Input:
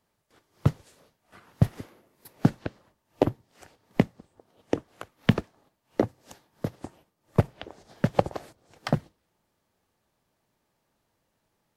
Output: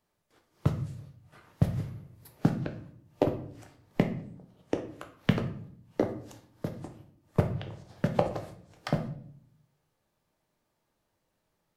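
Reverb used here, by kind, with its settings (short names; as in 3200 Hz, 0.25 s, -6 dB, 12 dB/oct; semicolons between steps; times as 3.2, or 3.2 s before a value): shoebox room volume 91 m³, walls mixed, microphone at 0.47 m; gain -4.5 dB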